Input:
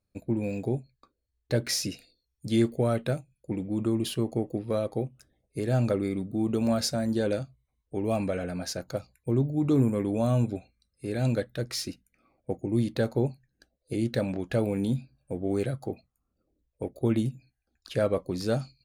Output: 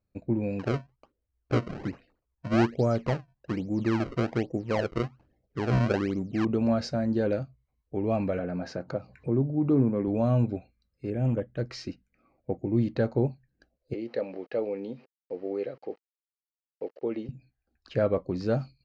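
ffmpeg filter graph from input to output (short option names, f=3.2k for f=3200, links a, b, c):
-filter_complex "[0:a]asettb=1/sr,asplit=3[a][b][c];[a]atrim=end=0.594[d];[b]atrim=start=0.59:end=6.45,asetpts=PTS-STARTPTS,afade=t=in:d=0.004:c=qsin,afade=t=out:st=5.856:d=0.004:c=qsin,lowpass=3.2k,acrusher=samples=30:mix=1:aa=0.000001:lfo=1:lforange=48:lforate=1.2[e];[c]atrim=start=6.446[f];[d][e]acrossfade=d=0.004:c1=hsin:c2=qsin[g];[g][f]acrossfade=d=0.004:c1=qsin:c2=hsin,asettb=1/sr,asplit=3[h][i][j];[h]atrim=end=8.394[k];[i]atrim=start=8.39:end=10.08,asetpts=PTS-STARTPTS,afade=t=in:d=0.004:c=qsin,afade=t=out:st=1.686:d=0.004:c=qsin,highpass=120,highshelf=f=2.7k:g=-11,acompressor=mode=upward:threshold=-27dB:ratio=2.5:attack=3.2:release=140:knee=2.83:detection=peak[l];[j]atrim=start=10.076[m];[k][l]acrossfade=d=0.004:c1=hsin:c2=qsin[n];[n][m]acrossfade=d=0.004:c1=qsin:c2=hsin,asettb=1/sr,asplit=3[o][p][q];[o]atrim=end=11.104[r];[p]atrim=start=11.1:end=11.57,asetpts=PTS-STARTPTS,afade=t=in:d=0.004:c=qsin,afade=t=out:st=0.466:d=0.004:c=qsin,equalizer=f=1.5k:t=o:w=1.9:g=-9,asoftclip=type=hard:threshold=-21dB,asuperstop=centerf=4700:order=12:qfactor=1.6[s];[q]atrim=start=11.566[t];[r][s]acrossfade=d=0.004:c1=hsin:c2=qsin[u];[u][t]acrossfade=d=0.004:c1=qsin:c2=hsin,asettb=1/sr,asplit=3[v][w][x];[v]atrim=end=13.944[y];[w]atrim=start=13.94:end=17.29,asetpts=PTS-STARTPTS,afade=t=in:d=0.004:c=qsin,afade=t=out:st=3.346:d=0.004:c=qsin,aeval=exprs='val(0)*gte(abs(val(0)),0.00447)':c=same,highpass=450,equalizer=f=470:t=q:w=4:g=5,equalizer=f=680:t=q:w=4:g=-5,equalizer=f=1k:t=q:w=4:g=-6,equalizer=f=1.5k:t=q:w=4:g=-9,equalizer=f=2.4k:t=q:w=4:g=-3,equalizer=f=3.5k:t=q:w=4:g=-6,lowpass=f=4.8k:w=0.5412,lowpass=f=4.8k:w=1.3066[z];[x]atrim=start=17.286[aa];[y][z]acrossfade=d=0.004:c1=hsin:c2=qsin[ab];[ab][aa]acrossfade=d=0.004:c1=qsin:c2=hsin,lowpass=f=6.3k:w=0.5412,lowpass=f=6.3k:w=1.3066,aemphasis=mode=reproduction:type=75fm,bandreject=f=3.5k:w=7.5"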